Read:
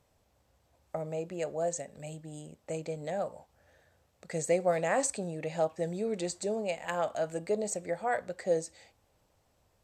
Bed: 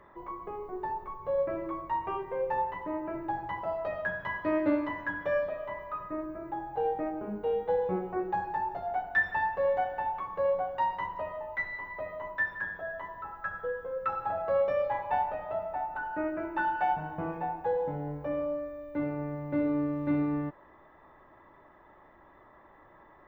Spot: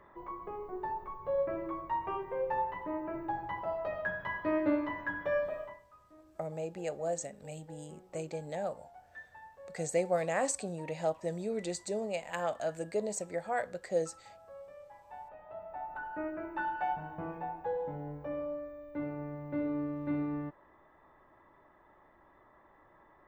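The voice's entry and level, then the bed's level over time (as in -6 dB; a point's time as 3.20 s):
5.45 s, -2.5 dB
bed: 5.61 s -2.5 dB
5.88 s -23 dB
14.96 s -23 dB
15.92 s -5.5 dB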